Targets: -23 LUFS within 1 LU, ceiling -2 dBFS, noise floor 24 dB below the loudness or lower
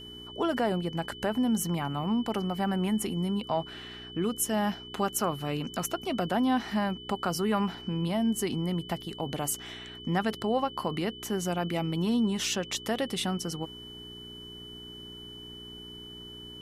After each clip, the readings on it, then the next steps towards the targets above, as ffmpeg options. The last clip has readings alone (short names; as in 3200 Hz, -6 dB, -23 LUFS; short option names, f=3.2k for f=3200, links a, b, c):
hum 60 Hz; harmonics up to 420 Hz; hum level -49 dBFS; steady tone 3000 Hz; tone level -44 dBFS; loudness -30.5 LUFS; peak -14.5 dBFS; loudness target -23.0 LUFS
-> -af "bandreject=f=60:t=h:w=4,bandreject=f=120:t=h:w=4,bandreject=f=180:t=h:w=4,bandreject=f=240:t=h:w=4,bandreject=f=300:t=h:w=4,bandreject=f=360:t=h:w=4,bandreject=f=420:t=h:w=4"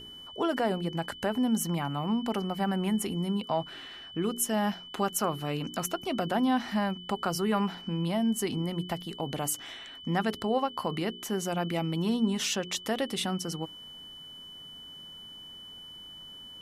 hum none; steady tone 3000 Hz; tone level -44 dBFS
-> -af "bandreject=f=3k:w=30"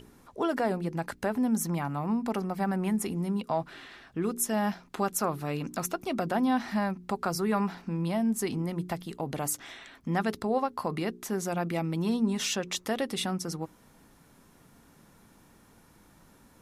steady tone none; loudness -30.5 LUFS; peak -14.5 dBFS; loudness target -23.0 LUFS
-> -af "volume=7.5dB"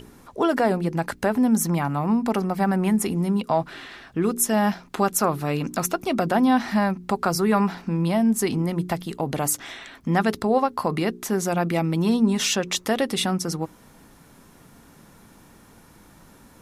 loudness -23.0 LUFS; peak -7.0 dBFS; noise floor -52 dBFS